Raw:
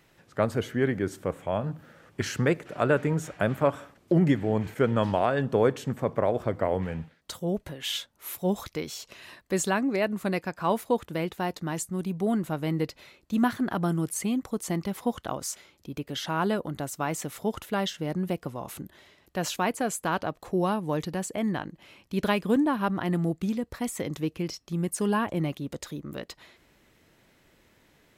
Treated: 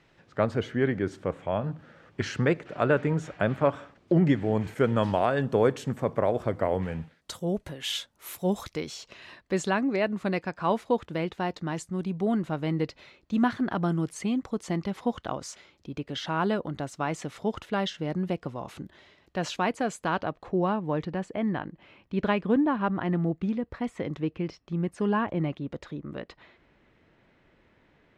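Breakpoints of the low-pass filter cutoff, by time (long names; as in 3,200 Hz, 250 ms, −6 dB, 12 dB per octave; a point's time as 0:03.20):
0:04.23 4,800 Hz
0:04.68 11,000 Hz
0:08.61 11,000 Hz
0:09.14 4,900 Hz
0:20.06 4,900 Hz
0:20.60 2,600 Hz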